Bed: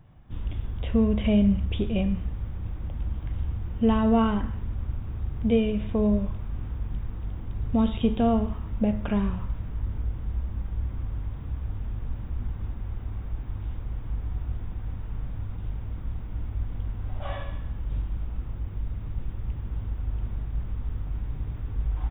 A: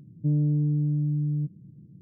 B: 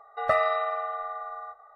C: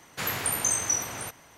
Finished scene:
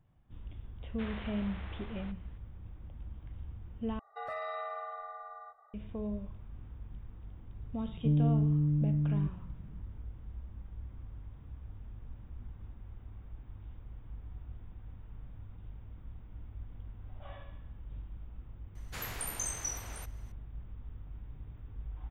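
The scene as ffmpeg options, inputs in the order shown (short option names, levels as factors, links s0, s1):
-filter_complex "[3:a]asplit=2[s0][s1];[0:a]volume=0.188[s2];[s0]aresample=8000,aresample=44100[s3];[2:a]alimiter=limit=0.0794:level=0:latency=1:release=12[s4];[s2]asplit=2[s5][s6];[s5]atrim=end=3.994[s7];[s4]atrim=end=1.75,asetpts=PTS-STARTPTS,volume=0.335[s8];[s6]atrim=start=5.736[s9];[s3]atrim=end=1.57,asetpts=PTS-STARTPTS,volume=0.211,afade=t=in:d=0.004:c=hsin,afade=t=out:st=1.566:d=0.004:c=hsin,adelay=810[s10];[1:a]atrim=end=2.01,asetpts=PTS-STARTPTS,volume=0.668,afade=t=in:d=0.004:c=hsin,afade=t=out:st=2.006:d=0.004:c=hsin,adelay=7810[s11];[s1]atrim=end=1.57,asetpts=PTS-STARTPTS,volume=0.282,afade=t=in:d=0.004:c=hsin,afade=t=out:st=1.566:d=0.004:c=hsin,adelay=18750[s12];[s7][s8]acrossfade=d=0.004:c1=hsin:c2=hsin[s13];[s13][s9]acrossfade=d=0.004:c1=hsin:c2=hsin[s14];[s14][s10][s11][s12]amix=inputs=4:normalize=0"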